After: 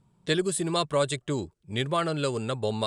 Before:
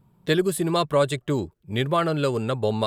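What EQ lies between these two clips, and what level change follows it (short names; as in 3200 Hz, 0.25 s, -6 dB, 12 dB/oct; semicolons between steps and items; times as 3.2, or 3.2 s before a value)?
steep low-pass 9800 Hz 48 dB/oct; high shelf 4000 Hz +10 dB; -5.0 dB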